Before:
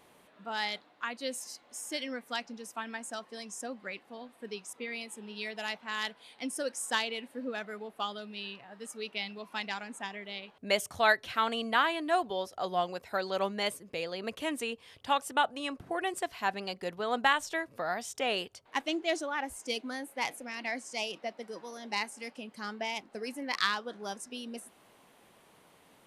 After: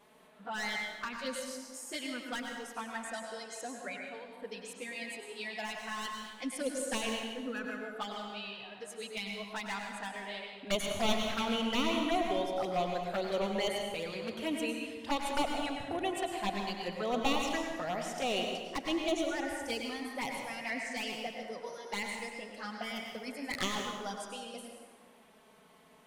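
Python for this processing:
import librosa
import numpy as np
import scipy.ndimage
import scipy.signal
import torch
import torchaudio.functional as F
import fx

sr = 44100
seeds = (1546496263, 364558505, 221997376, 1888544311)

p1 = np.minimum(x, 2.0 * 10.0 ** (-26.0 / 20.0) - x)
p2 = fx.high_shelf(p1, sr, hz=3700.0, db=-3.0)
p3 = 10.0 ** (-25.0 / 20.0) * np.tanh(p2 / 10.0 ** (-25.0 / 20.0))
p4 = p2 + (p3 * librosa.db_to_amplitude(-10.0))
p5 = fx.env_flanger(p4, sr, rest_ms=5.1, full_db=-27.5)
p6 = fx.rev_plate(p5, sr, seeds[0], rt60_s=1.5, hf_ratio=0.65, predelay_ms=85, drr_db=1.5)
y = p6 * librosa.db_to_amplitude(-1.0)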